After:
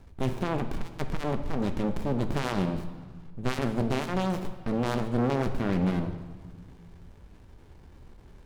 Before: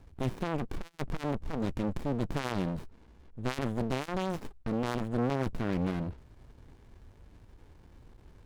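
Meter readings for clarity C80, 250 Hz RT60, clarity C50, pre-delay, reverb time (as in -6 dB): 12.0 dB, 2.1 s, 10.0 dB, 4 ms, 1.5 s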